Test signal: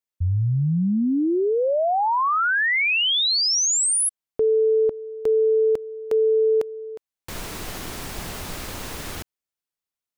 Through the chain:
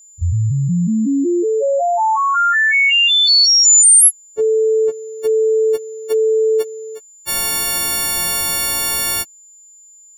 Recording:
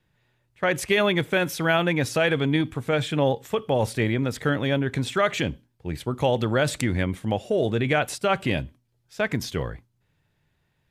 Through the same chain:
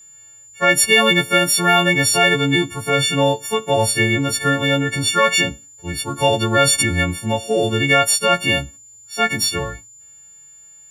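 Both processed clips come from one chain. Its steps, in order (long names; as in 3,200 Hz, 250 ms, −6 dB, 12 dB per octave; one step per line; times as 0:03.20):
every partial snapped to a pitch grid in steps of 4 semitones
steady tone 7,100 Hz −47 dBFS
harmonic and percussive parts rebalanced harmonic +6 dB
level −1 dB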